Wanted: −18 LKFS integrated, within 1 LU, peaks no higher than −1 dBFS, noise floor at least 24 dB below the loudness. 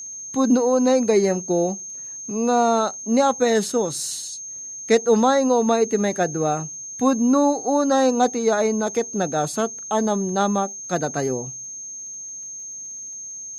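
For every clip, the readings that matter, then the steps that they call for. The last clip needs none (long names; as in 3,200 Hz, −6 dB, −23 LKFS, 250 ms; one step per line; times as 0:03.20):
crackle rate 28 per second; interfering tone 6,400 Hz; level of the tone −32 dBFS; integrated loudness −21.0 LKFS; sample peak −4.5 dBFS; target loudness −18.0 LKFS
→ click removal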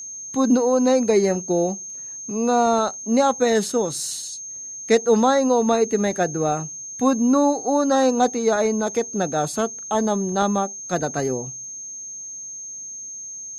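crackle rate 0.15 per second; interfering tone 6,400 Hz; level of the tone −32 dBFS
→ notch filter 6,400 Hz, Q 30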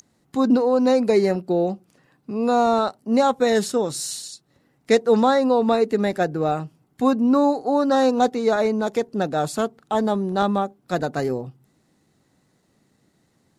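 interfering tone none found; integrated loudness −21.0 LKFS; sample peak −4.5 dBFS; target loudness −18.0 LKFS
→ level +3 dB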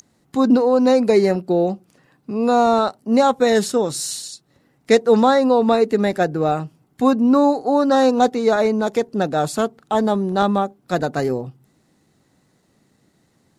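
integrated loudness −18.0 LKFS; sample peak −1.5 dBFS; background noise floor −62 dBFS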